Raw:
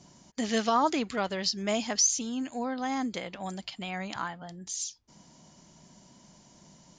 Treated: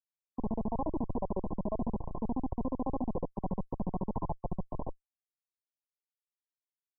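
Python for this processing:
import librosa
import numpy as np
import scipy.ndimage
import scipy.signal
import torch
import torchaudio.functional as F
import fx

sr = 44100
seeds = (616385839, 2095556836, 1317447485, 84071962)

y = fx.rev_double_slope(x, sr, seeds[0], early_s=0.31, late_s=2.2, knee_db=-18, drr_db=18.0)
y = fx.granulator(y, sr, seeds[1], grain_ms=46.0, per_s=14.0, spray_ms=10.0, spread_st=0)
y = fx.schmitt(y, sr, flips_db=-42.0)
y = fx.brickwall_lowpass(y, sr, high_hz=1100.0)
y = y * librosa.db_to_amplitude(9.0)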